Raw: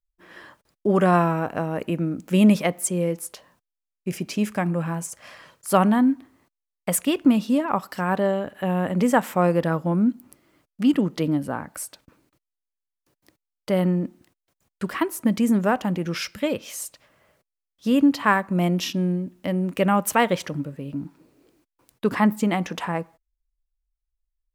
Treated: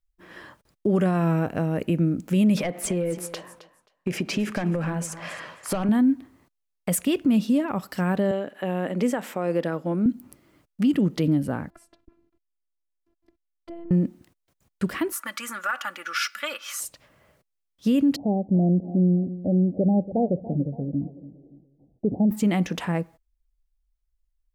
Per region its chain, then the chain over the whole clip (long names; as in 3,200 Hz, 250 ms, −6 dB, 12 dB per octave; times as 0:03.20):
0:02.57–0:05.89: mid-hump overdrive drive 19 dB, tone 1,600 Hz, clips at −4 dBFS + downward compressor 5 to 1, threshold −24 dBFS + repeating echo 266 ms, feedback 18%, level −15.5 dB
0:08.31–0:10.06: high-pass filter 300 Hz + high-shelf EQ 7,700 Hz −8 dB
0:11.70–0:13.91: drawn EQ curve 220 Hz 0 dB, 3,100 Hz −13 dB, 13,000 Hz −27 dB + downward compressor 4 to 1, threshold −35 dBFS + phases set to zero 338 Hz
0:15.12–0:16.80: high-pass with resonance 1,300 Hz, resonance Q 6.8 + comb filter 3.5 ms, depth 64%
0:18.16–0:22.31: Butterworth low-pass 790 Hz 96 dB per octave + repeating echo 284 ms, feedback 40%, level −17 dB
whole clip: low-shelf EQ 250 Hz +6.5 dB; brickwall limiter −13.5 dBFS; dynamic equaliser 1,000 Hz, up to −7 dB, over −40 dBFS, Q 1.4